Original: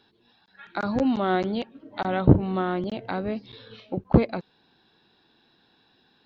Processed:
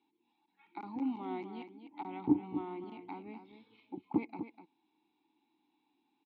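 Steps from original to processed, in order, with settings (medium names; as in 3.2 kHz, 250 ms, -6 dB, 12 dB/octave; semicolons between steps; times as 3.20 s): vowel filter u; bass shelf 400 Hz -6 dB; on a send: delay 249 ms -10 dB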